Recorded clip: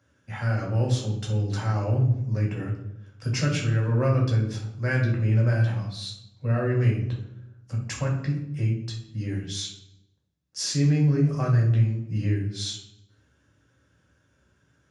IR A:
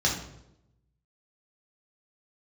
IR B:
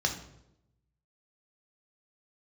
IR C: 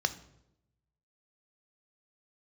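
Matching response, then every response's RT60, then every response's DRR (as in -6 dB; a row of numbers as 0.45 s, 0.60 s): A; 0.85 s, 0.85 s, 0.85 s; -3.0 dB, 2.5 dB, 10.0 dB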